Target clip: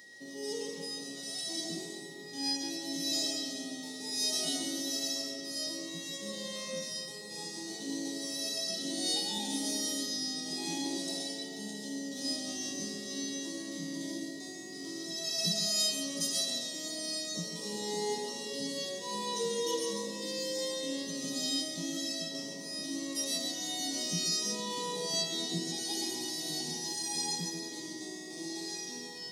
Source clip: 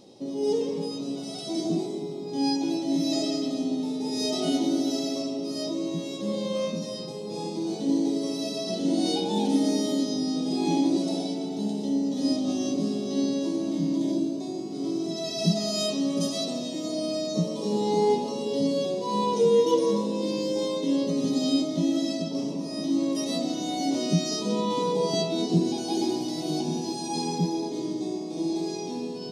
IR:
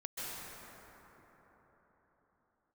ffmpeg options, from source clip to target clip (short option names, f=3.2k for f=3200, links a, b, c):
-filter_complex "[0:a]crystalizer=i=8:c=0,aeval=exprs='val(0)+0.0141*sin(2*PI*1900*n/s)':c=same[a];[1:a]atrim=start_sample=2205,afade=t=out:st=0.19:d=0.01,atrim=end_sample=8820[b];[a][b]afir=irnorm=-1:irlink=0,volume=-9dB"